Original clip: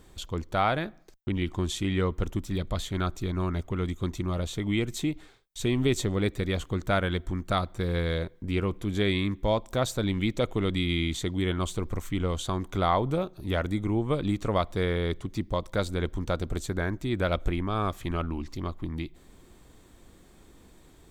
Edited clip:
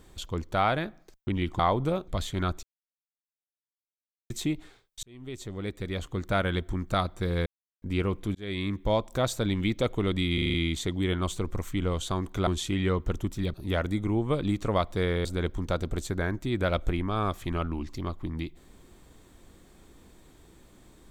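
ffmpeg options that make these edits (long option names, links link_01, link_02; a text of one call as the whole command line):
ffmpeg -i in.wav -filter_complex "[0:a]asplit=17[link_01][link_02][link_03][link_04][link_05][link_06][link_07][link_08][link_09][link_10][link_11][link_12][link_13][link_14][link_15][link_16][link_17];[link_01]atrim=end=1.592[link_18];[link_02]atrim=start=12.848:end=13.342[link_19];[link_03]atrim=start=2.658:end=3.21,asetpts=PTS-STARTPTS,afade=type=out:start_time=0.548:duration=0.004:curve=hsin[link_20];[link_04]atrim=start=3.21:end=4.88,asetpts=PTS-STARTPTS,volume=0[link_21];[link_05]atrim=start=4.88:end=5.61,asetpts=PTS-STARTPTS,afade=type=in:duration=0.004:curve=hsin,afade=type=out:start_time=0.726:duration=0.004:curve=hsin[link_22];[link_06]atrim=start=5.61:end=8.04,asetpts=PTS-STARTPTS,afade=type=in:duration=1.49,afade=type=out:start_time=2.426:duration=0.004:curve=hsin[link_23];[link_07]atrim=start=8.04:end=8.4,asetpts=PTS-STARTPTS,volume=0[link_24];[link_08]atrim=start=8.4:end=8.93,asetpts=PTS-STARTPTS,afade=type=in:duration=0.004:curve=hsin,afade=type=out:start_time=0.526:duration=0.004:curve=hsin[link_25];[link_09]atrim=start=8.93:end=10.962,asetpts=PTS-STARTPTS,afade=type=in:duration=0.59:curve=qsin[link_26];[link_10]atrim=start=10.918:end=10.962[link_27];[link_11]atrim=start=10.918:end=10.962[link_28];[link_12]atrim=start=10.918:end=10.962[link_29];[link_13]atrim=start=10.918:end=10.962[link_30];[link_14]atrim=start=10.918:end=12.852[link_31];[link_15]atrim=start=1.588:end=2.662[link_32];[link_16]atrim=start=13.338:end=15.052[link_33];[link_17]atrim=start=15.838[link_34];[link_18][link_19]acrossfade=duration=0.004:curve1=hsin:curve2=hsin[link_35];[link_20][link_21][link_22][link_23][link_24][link_25][link_26]concat=n=7:v=0:a=1[link_36];[link_35][link_36]acrossfade=duration=0.004:curve1=hsin:curve2=hsin[link_37];[link_37][link_27]acrossfade=duration=0.004:curve1=hsin:curve2=hsin[link_38];[link_38][link_28]acrossfade=duration=0.004:curve1=hsin:curve2=hsin[link_39];[link_39][link_29]acrossfade=duration=0.004:curve1=hsin:curve2=hsin[link_40];[link_40][link_30]acrossfade=duration=0.004:curve1=hsin:curve2=hsin[link_41];[link_41][link_31]acrossfade=duration=0.004:curve1=hsin:curve2=hsin[link_42];[link_42][link_32]acrossfade=duration=0.004:curve1=hsin:curve2=hsin[link_43];[link_43][link_33]acrossfade=duration=0.004:curve1=hsin:curve2=hsin[link_44];[link_44][link_34]acrossfade=duration=0.004:curve1=hsin:curve2=hsin" out.wav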